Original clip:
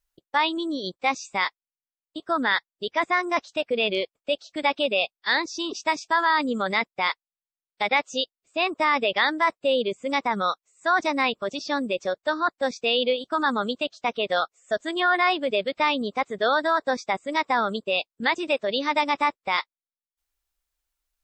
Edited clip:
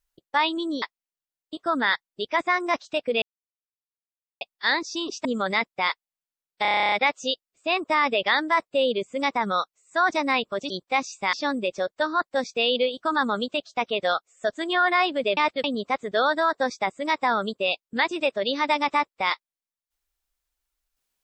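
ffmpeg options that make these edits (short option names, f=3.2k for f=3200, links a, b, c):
-filter_complex "[0:a]asplit=19[a][b][c][d][e][f][g][h][i][j][k][l][m][n][o][p][q][r][s];[a]atrim=end=0.822[t];[b]atrim=start=1.448:end=3.85,asetpts=PTS-STARTPTS,afade=t=out:st=2.398:d=0.004:c=hsin[u];[c]atrim=start=3.85:end=5.04,asetpts=PTS-STARTPTS,volume=0[v];[d]atrim=start=5.04:end=5.882,asetpts=PTS-STARTPTS,afade=t=in:d=0.004:c=hsin[w];[e]atrim=start=6.448:end=7.852[x];[f]atrim=start=7.818:end=7.852[y];[g]atrim=start=7.818:end=7.852[z];[h]atrim=start=7.818:end=7.852[aa];[i]atrim=start=7.818:end=7.852[ab];[j]atrim=start=7.818:end=7.852[ac];[k]atrim=start=7.818:end=7.852[ad];[l]atrim=start=7.818:end=7.852[ae];[m]atrim=start=7.818:end=7.852[af];[n]atrim=start=7.818:end=7.852[ag];[o]atrim=start=7.818:end=11.602[ah];[p]atrim=start=0.818:end=1.452[ai];[q]atrim=start=11.598:end=15.642[aj];[r]atrim=start=15.638:end=15.912,asetpts=PTS-STARTPTS,areverse[ak];[s]atrim=start=15.908[al];[u][v][w]concat=n=3:v=0:a=1[am];[t][am]acrossfade=d=0.004:c1=hsin:c2=hsin[an];[an][x]acrossfade=d=0.004:c1=hsin:c2=hsin[ao];[ao][y]acrossfade=d=0.004:c1=hsin:c2=hsin[ap];[ap][z]acrossfade=d=0.004:c1=hsin:c2=hsin[aq];[aq][aa]acrossfade=d=0.004:c1=hsin:c2=hsin[ar];[ar][ab]acrossfade=d=0.004:c1=hsin:c2=hsin[as];[as][ac]acrossfade=d=0.004:c1=hsin:c2=hsin[at];[at][ad]acrossfade=d=0.004:c1=hsin:c2=hsin[au];[au][ae]acrossfade=d=0.004:c1=hsin:c2=hsin[av];[av][af]acrossfade=d=0.004:c1=hsin:c2=hsin[aw];[aw][ag]acrossfade=d=0.004:c1=hsin:c2=hsin[ax];[ax][ah]acrossfade=d=0.004:c1=hsin:c2=hsin[ay];[ay][ai]acrossfade=d=0.004:c1=hsin:c2=hsin[az];[az][aj]acrossfade=d=0.004:c1=hsin:c2=hsin[ba];[ba][ak]acrossfade=d=0.004:c1=hsin:c2=hsin[bb];[bb][al]acrossfade=d=0.004:c1=hsin:c2=hsin"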